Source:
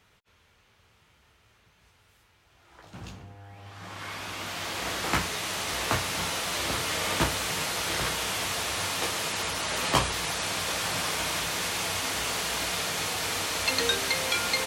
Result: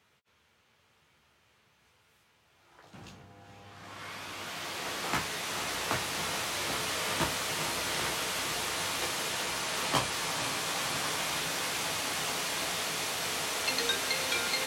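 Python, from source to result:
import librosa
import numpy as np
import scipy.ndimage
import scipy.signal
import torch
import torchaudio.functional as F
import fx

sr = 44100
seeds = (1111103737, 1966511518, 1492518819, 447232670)

y = scipy.signal.sosfilt(scipy.signal.butter(2, 110.0, 'highpass', fs=sr, output='sos'), x)
y = fx.doubler(y, sr, ms=14.0, db=-10.5)
y = fx.echo_diffused(y, sr, ms=473, feedback_pct=77, wet_db=-7.5)
y = F.gain(torch.from_numpy(y), -5.0).numpy()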